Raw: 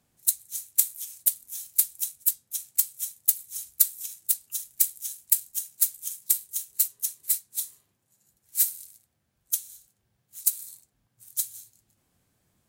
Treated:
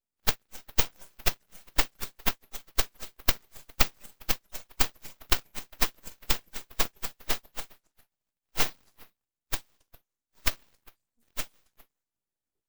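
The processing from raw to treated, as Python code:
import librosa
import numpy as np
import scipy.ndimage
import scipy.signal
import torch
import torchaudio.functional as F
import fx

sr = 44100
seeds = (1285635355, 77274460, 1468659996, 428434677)

y = fx.noise_reduce_blind(x, sr, reduce_db=20)
y = fx.echo_stepped(y, sr, ms=135, hz=800.0, octaves=1.4, feedback_pct=70, wet_db=-11)
y = np.abs(y)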